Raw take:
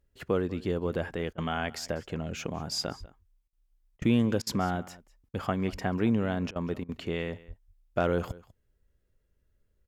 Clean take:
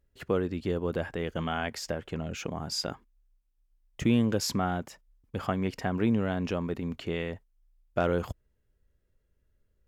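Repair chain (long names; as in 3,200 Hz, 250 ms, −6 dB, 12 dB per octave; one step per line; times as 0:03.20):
0:02.99–0:03.11: high-pass filter 140 Hz 24 dB per octave
0:05.71–0:05.83: high-pass filter 140 Hz 24 dB per octave
0:07.47–0:07.59: high-pass filter 140 Hz 24 dB per octave
repair the gap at 0:01.33/0:03.48/0:03.97/0:04.42/0:05.29/0:06.51/0:06.84, 47 ms
echo removal 195 ms −20.5 dB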